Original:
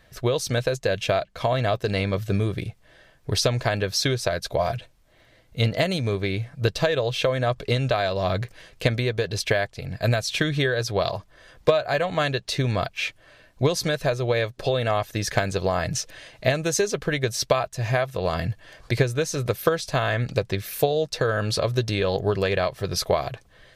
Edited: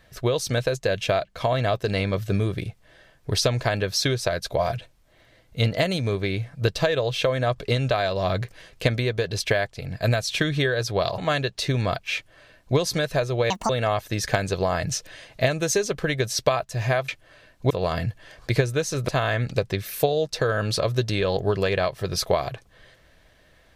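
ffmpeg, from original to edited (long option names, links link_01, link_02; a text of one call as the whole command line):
ffmpeg -i in.wav -filter_complex "[0:a]asplit=7[link_01][link_02][link_03][link_04][link_05][link_06][link_07];[link_01]atrim=end=11.182[link_08];[link_02]atrim=start=12.078:end=14.404[link_09];[link_03]atrim=start=14.4:end=14.73,asetpts=PTS-STARTPTS,asetrate=74970,aresample=44100[link_10];[link_04]atrim=start=14.726:end=18.122[link_11];[link_05]atrim=start=13.048:end=13.672[link_12];[link_06]atrim=start=18.118:end=19.502[link_13];[link_07]atrim=start=19.878[link_14];[link_08][link_09]acrossfade=duration=0.004:curve1=hsin:curve2=hsin[link_15];[link_15][link_10]acrossfade=duration=0.004:curve1=hsin:curve2=hsin[link_16];[link_16][link_11]acrossfade=duration=0.004:curve1=hsin:curve2=hsin[link_17];[link_17][link_12]acrossfade=duration=0.004:curve1=hsin:curve2=hsin[link_18];[link_18][link_13]acrossfade=duration=0.004:curve1=hsin:curve2=hsin[link_19];[link_19][link_14]acrossfade=duration=0.004:curve1=hsin:curve2=hsin" out.wav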